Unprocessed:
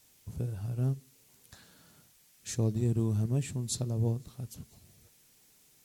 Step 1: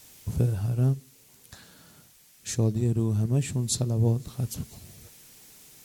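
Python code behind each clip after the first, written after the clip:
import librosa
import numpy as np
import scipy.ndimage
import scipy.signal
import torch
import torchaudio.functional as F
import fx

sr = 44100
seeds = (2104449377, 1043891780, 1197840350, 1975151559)

y = fx.rider(x, sr, range_db=5, speed_s=0.5)
y = y * librosa.db_to_amplitude(6.5)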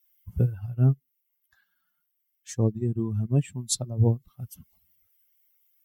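y = fx.bin_expand(x, sr, power=2.0)
y = fx.upward_expand(y, sr, threshold_db=-40.0, expansion=1.5)
y = y * librosa.db_to_amplitude(5.5)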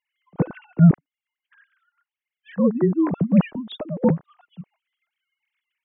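y = fx.sine_speech(x, sr)
y = y * librosa.db_to_amplitude(5.5)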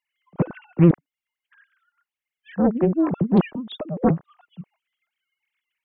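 y = fx.doppler_dist(x, sr, depth_ms=0.98)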